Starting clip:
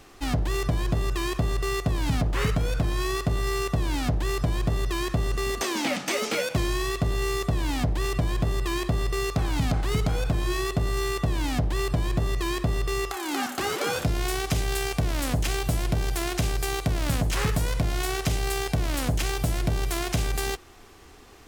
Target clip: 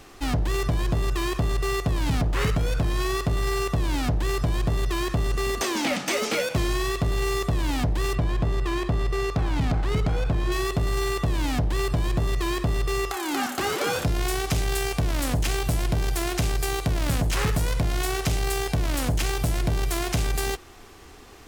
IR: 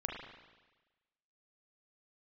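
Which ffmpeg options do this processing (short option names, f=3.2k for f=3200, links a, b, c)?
-filter_complex "[0:a]asettb=1/sr,asplit=3[a][b][c];[a]atrim=end=8.154[d];[b]atrim=start=8.15:end=10.52,asetpts=PTS-STARTPTS,afade=t=in:d=0.004:c=qsin,afade=t=out:st=2.366:d=0.004:c=qsin,lowpass=f=2.9k:p=1[e];[c]atrim=start=10.516[f];[d][e]acrossfade=d=0.004:c1=hsin:c2=qsin[g];[g][f]acrossfade=d=0.004:c1=qsin:c2=hsin,asoftclip=type=tanh:threshold=-19dB,volume=3dB"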